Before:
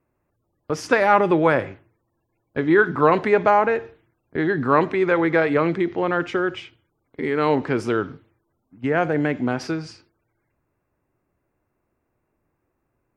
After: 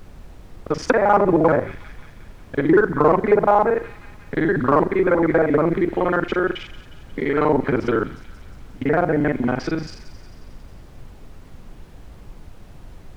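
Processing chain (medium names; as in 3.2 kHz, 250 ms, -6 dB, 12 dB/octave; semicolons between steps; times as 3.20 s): time reversed locally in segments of 39 ms; on a send: feedback echo behind a high-pass 180 ms, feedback 60%, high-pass 2.4 kHz, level -13 dB; on the sum: low-pass that closes with the level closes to 1.2 kHz, closed at -15 dBFS; band-stop 2.7 kHz, Q 16; in parallel at -9 dB: overload inside the chain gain 10.5 dB; on the sum: added noise brown -38 dBFS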